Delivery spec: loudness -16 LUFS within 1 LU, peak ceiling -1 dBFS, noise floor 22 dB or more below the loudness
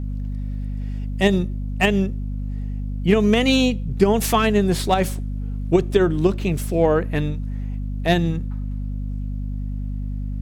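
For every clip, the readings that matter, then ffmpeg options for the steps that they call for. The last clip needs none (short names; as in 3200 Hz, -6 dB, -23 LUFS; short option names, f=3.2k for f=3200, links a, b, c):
hum 50 Hz; harmonics up to 250 Hz; hum level -24 dBFS; loudness -22.0 LUFS; peak -3.5 dBFS; loudness target -16.0 LUFS
-> -af "bandreject=f=50:t=h:w=6,bandreject=f=100:t=h:w=6,bandreject=f=150:t=h:w=6,bandreject=f=200:t=h:w=6,bandreject=f=250:t=h:w=6"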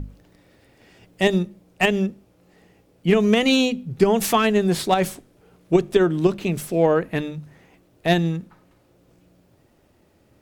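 hum none; loudness -21.0 LUFS; peak -4.5 dBFS; loudness target -16.0 LUFS
-> -af "volume=5dB,alimiter=limit=-1dB:level=0:latency=1"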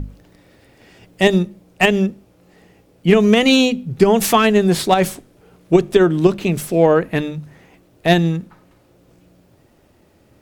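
loudness -16.0 LUFS; peak -1.0 dBFS; noise floor -54 dBFS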